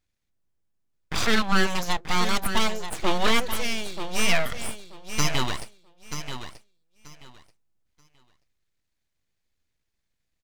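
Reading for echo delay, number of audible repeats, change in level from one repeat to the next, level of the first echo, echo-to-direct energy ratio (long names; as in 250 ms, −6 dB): 933 ms, 2, −14.0 dB, −9.5 dB, −9.5 dB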